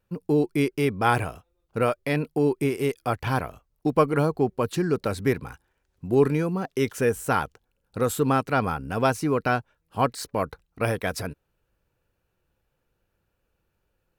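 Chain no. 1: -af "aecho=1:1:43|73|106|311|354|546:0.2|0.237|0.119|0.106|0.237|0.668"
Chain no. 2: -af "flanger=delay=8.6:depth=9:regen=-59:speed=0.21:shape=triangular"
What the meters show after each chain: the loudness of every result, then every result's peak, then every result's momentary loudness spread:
−24.0, −29.5 LKFS; −5.0, −11.5 dBFS; 7, 10 LU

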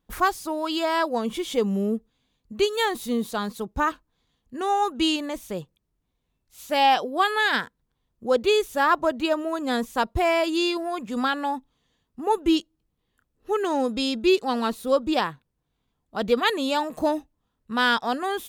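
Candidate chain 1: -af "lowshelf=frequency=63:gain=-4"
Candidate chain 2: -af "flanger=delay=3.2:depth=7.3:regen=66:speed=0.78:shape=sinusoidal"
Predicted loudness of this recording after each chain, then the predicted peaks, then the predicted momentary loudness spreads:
−24.5, −29.0 LKFS; −7.5, −10.5 dBFS; 10, 9 LU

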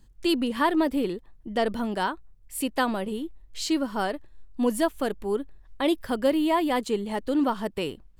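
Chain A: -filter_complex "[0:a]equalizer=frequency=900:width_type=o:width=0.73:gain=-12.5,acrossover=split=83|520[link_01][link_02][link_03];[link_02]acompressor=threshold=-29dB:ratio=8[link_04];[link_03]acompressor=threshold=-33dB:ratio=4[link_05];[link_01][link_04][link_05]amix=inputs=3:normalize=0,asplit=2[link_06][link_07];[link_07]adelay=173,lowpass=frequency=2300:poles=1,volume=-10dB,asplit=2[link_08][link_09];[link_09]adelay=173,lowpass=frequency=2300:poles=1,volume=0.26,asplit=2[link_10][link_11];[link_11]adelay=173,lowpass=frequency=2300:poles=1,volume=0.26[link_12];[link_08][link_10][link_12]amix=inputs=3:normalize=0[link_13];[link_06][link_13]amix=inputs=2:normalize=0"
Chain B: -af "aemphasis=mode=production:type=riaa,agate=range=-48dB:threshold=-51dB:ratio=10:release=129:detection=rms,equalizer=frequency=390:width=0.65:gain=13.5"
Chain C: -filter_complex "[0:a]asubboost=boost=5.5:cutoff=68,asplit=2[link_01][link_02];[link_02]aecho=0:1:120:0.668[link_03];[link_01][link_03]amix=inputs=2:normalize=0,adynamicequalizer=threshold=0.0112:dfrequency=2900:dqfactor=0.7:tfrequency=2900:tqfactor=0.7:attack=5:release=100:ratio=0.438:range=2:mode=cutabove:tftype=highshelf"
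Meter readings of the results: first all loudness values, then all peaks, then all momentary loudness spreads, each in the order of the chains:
−32.5, −20.0, −26.5 LKFS; −17.5, −3.5, −10.5 dBFS; 7, 9, 10 LU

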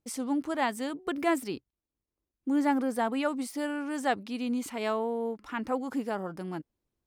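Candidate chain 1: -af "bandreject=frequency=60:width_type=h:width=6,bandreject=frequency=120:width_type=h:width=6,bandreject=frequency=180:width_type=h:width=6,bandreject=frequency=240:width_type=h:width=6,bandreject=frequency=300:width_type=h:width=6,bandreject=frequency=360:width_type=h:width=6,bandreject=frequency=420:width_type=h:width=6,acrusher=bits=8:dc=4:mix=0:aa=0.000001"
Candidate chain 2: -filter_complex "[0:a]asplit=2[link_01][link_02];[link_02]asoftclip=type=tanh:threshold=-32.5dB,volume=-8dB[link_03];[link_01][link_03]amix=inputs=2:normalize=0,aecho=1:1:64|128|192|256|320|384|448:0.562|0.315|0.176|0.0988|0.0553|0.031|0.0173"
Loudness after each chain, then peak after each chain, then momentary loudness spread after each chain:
−31.5, −28.5 LKFS; −14.5, −13.5 dBFS; 9, 9 LU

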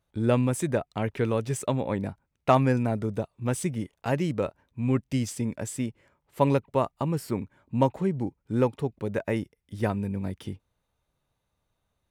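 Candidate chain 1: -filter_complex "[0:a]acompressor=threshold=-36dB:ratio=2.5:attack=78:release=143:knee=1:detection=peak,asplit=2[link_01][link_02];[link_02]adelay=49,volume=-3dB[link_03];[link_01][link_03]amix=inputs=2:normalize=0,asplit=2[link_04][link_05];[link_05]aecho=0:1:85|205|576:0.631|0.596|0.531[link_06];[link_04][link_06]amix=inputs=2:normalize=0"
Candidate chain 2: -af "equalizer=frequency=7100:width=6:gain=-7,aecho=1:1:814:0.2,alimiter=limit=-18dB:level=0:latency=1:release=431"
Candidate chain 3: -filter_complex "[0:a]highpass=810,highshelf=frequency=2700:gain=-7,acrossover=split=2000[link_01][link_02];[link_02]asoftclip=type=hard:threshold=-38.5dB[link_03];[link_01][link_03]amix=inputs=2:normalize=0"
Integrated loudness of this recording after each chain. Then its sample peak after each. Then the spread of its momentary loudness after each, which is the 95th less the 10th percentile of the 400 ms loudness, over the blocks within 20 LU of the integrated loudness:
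−29.5, −31.5, −37.5 LKFS; −12.5, −18.0, −11.5 dBFS; 5, 8, 14 LU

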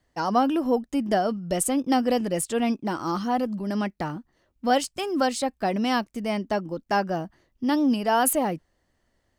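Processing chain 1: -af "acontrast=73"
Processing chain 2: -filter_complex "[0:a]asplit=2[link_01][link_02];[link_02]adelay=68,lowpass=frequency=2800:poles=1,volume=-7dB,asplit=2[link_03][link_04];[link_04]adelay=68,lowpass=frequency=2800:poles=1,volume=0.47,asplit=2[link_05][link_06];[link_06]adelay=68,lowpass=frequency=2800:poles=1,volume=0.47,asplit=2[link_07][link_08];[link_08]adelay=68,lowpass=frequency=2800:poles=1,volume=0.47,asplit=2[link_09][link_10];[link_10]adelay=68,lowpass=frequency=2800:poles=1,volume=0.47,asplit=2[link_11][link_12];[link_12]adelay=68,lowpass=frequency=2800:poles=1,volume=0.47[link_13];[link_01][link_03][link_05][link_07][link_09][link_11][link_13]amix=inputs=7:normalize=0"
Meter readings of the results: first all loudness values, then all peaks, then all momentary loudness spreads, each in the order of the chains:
−19.0, −24.5 LKFS; −5.0, −8.5 dBFS; 8, 8 LU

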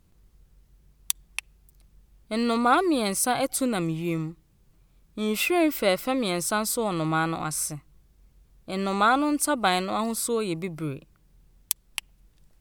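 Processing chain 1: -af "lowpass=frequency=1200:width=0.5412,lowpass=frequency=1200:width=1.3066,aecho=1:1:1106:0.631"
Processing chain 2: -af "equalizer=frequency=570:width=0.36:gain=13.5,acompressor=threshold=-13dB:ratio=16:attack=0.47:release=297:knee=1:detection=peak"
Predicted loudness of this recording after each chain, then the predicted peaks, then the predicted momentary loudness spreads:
−27.0, −22.0 LKFS; −11.0, −3.0 dBFS; 10, 15 LU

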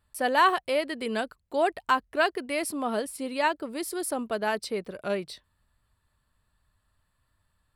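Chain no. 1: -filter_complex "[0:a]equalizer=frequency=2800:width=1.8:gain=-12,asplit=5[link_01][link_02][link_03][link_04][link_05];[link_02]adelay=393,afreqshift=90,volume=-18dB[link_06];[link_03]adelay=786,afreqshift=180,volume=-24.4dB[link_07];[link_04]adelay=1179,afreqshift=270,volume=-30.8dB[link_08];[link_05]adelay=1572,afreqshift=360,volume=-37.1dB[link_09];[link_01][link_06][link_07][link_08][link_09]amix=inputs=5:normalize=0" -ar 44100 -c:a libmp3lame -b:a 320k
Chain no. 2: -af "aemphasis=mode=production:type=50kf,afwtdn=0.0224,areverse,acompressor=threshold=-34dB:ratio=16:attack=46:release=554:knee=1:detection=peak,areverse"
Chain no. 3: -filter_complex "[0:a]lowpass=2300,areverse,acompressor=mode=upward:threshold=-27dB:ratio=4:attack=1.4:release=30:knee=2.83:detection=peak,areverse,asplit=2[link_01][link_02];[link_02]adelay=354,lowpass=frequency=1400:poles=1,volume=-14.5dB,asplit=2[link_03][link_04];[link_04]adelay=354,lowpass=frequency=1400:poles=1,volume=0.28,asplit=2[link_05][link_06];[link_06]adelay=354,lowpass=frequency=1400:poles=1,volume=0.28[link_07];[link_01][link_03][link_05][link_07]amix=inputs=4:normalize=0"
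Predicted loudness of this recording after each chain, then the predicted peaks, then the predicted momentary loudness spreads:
−29.0, −37.5, −28.5 LKFS; −12.0, −18.0, −11.0 dBFS; 10, 4, 20 LU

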